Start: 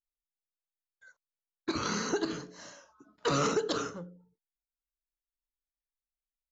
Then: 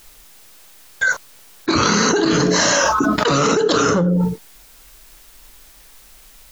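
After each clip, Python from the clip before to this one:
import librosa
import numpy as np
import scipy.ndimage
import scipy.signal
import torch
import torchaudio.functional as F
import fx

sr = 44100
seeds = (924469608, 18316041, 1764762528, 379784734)

y = fx.env_flatten(x, sr, amount_pct=100)
y = y * librosa.db_to_amplitude(9.0)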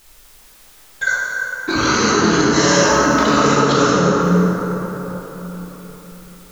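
y = fx.rev_plate(x, sr, seeds[0], rt60_s=4.3, hf_ratio=0.45, predelay_ms=0, drr_db=-5.5)
y = y * librosa.db_to_amplitude(-4.5)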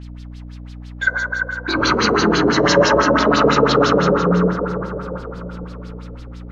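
y = fx.add_hum(x, sr, base_hz=60, snr_db=14)
y = fx.filter_lfo_lowpass(y, sr, shape='sine', hz=6.0, low_hz=490.0, high_hz=5000.0, q=2.6)
y = y * librosa.db_to_amplitude(-2.5)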